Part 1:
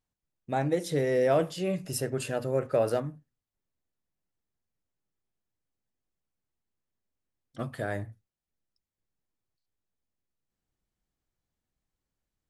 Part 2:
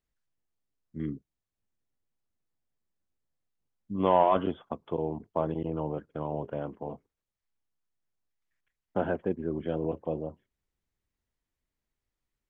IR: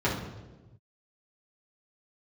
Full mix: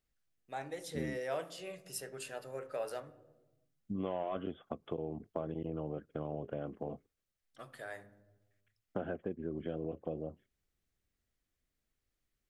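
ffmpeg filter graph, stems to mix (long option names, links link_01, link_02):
-filter_complex "[0:a]highpass=frequency=1000:poles=1,volume=-8dB,asplit=2[link_01][link_02];[link_02]volume=-23dB[link_03];[1:a]equalizer=frequency=940:width_type=o:width=0.25:gain=-13.5,acompressor=threshold=-37dB:ratio=4,volume=1dB[link_04];[2:a]atrim=start_sample=2205[link_05];[link_03][link_05]afir=irnorm=-1:irlink=0[link_06];[link_01][link_04][link_06]amix=inputs=3:normalize=0"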